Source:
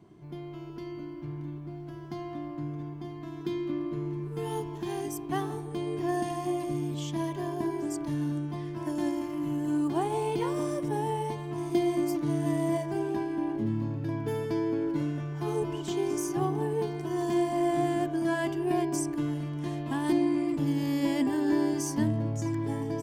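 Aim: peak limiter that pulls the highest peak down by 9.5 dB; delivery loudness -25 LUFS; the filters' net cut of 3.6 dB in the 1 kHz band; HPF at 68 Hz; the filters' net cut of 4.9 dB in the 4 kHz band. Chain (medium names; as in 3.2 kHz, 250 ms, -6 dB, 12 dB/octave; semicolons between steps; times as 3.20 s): high-pass 68 Hz; peaking EQ 1 kHz -5 dB; peaking EQ 4 kHz -6.5 dB; trim +9 dB; peak limiter -16 dBFS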